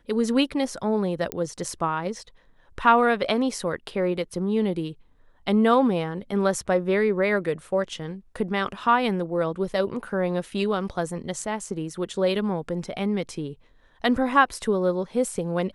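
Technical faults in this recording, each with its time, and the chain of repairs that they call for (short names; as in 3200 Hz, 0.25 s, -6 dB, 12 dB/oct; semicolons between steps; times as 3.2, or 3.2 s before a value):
1.32 pop -11 dBFS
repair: de-click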